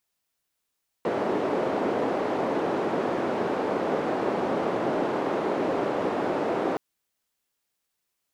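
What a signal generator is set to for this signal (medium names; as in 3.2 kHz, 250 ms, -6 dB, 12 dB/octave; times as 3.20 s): noise band 340–470 Hz, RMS -26.5 dBFS 5.72 s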